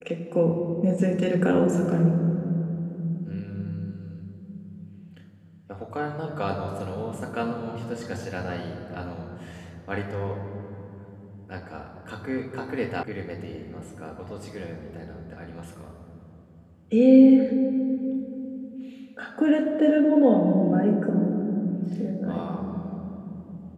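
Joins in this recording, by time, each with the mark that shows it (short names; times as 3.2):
13.03 sound cut off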